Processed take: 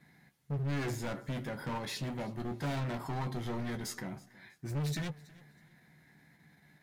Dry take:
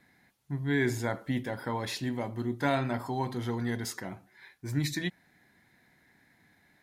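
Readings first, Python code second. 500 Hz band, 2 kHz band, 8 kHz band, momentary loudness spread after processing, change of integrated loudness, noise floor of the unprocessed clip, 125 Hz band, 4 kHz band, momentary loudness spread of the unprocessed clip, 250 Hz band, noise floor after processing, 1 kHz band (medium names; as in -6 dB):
-6.5 dB, -7.5 dB, -4.0 dB, 10 LU, -5.0 dB, -66 dBFS, -2.0 dB, -4.5 dB, 10 LU, -6.0 dB, -66 dBFS, -6.0 dB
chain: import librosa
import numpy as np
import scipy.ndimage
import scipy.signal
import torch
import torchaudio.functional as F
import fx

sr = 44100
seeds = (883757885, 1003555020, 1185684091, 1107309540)

p1 = fx.peak_eq(x, sr, hz=160.0, db=12.5, octaves=0.45)
p2 = fx.level_steps(p1, sr, step_db=16)
p3 = p1 + (p2 * 10.0 ** (-1.0 / 20.0))
p4 = np.clip(10.0 ** (28.5 / 20.0) * p3, -1.0, 1.0) / 10.0 ** (28.5 / 20.0)
p5 = fx.doubler(p4, sr, ms=14.0, db=-8.5)
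p6 = fx.echo_feedback(p5, sr, ms=323, feedback_pct=29, wet_db=-21.5)
y = p6 * 10.0 ** (-5.5 / 20.0)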